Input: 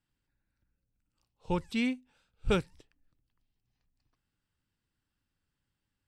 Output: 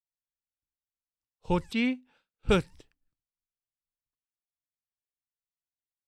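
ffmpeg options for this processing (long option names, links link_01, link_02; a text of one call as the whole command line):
ffmpeg -i in.wav -filter_complex "[0:a]agate=range=-33dB:threshold=-59dB:ratio=3:detection=peak,asettb=1/sr,asplit=3[link_01][link_02][link_03];[link_01]atrim=end=1.734[link_04];[link_02]atrim=start=1.73:end=2.49,asetpts=PTS-STARTPTS,afade=type=in:duration=0.004:curve=qsin,afade=type=out:start_time=0.756:duration=0.004:curve=qsin,acrossover=split=170 4600:gain=0.178 1 0.2[link_05][link_06][link_07];[link_05][link_06][link_07]amix=inputs=3:normalize=0[link_08];[link_03]atrim=start=2.486[link_09];[link_04][link_08]acrossfade=duration=0.004:curve1=hsin:curve2=qsin[link_10];[link_10][link_09]acrossfade=duration=0.004:curve1=qsin:curve2=hsin,volume=4dB" out.wav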